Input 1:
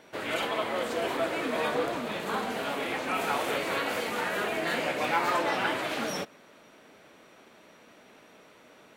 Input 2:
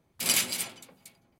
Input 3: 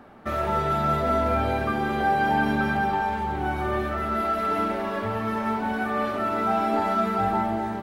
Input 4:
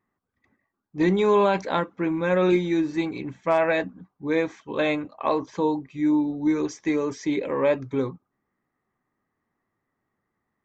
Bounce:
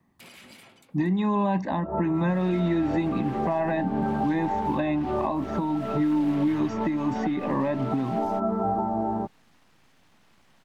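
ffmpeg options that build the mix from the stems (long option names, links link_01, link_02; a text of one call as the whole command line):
ffmpeg -i stem1.wav -i stem2.wav -i stem3.wav -i stem4.wav -filter_complex "[0:a]acompressor=threshold=-31dB:ratio=6,aeval=exprs='abs(val(0))':channel_layout=same,adelay=2150,volume=-5dB[link_01];[1:a]alimiter=limit=-19.5dB:level=0:latency=1:release=33,acompressor=threshold=-35dB:ratio=6,volume=-4.5dB[link_02];[2:a]lowpass=frequency=1000:width=0.5412,lowpass=frequency=1000:width=1.3066,adelay=1450,volume=3dB[link_03];[3:a]equalizer=frequency=220:width_type=o:width=2.4:gain=11.5,acompressor=threshold=-13dB:ratio=6,aecho=1:1:1.1:0.91,volume=0.5dB,asplit=2[link_04][link_05];[link_05]apad=whole_len=408931[link_06];[link_03][link_06]sidechaincompress=threshold=-23dB:ratio=8:attack=30:release=186[link_07];[link_01][link_02][link_07][link_04]amix=inputs=4:normalize=0,acrossover=split=120|1100|3300[link_08][link_09][link_10][link_11];[link_08]acompressor=threshold=-43dB:ratio=4[link_12];[link_09]acompressor=threshold=-22dB:ratio=4[link_13];[link_10]acompressor=threshold=-37dB:ratio=4[link_14];[link_11]acompressor=threshold=-59dB:ratio=4[link_15];[link_12][link_13][link_14][link_15]amix=inputs=4:normalize=0,alimiter=limit=-16dB:level=0:latency=1:release=320" out.wav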